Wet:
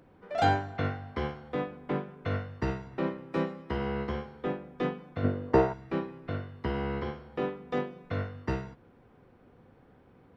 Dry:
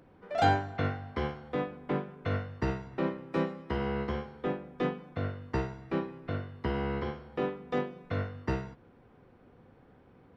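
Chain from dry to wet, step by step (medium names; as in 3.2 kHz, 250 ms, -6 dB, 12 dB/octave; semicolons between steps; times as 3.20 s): 5.23–5.72 s: peaking EQ 240 Hz -> 770 Hz +14 dB 2.3 oct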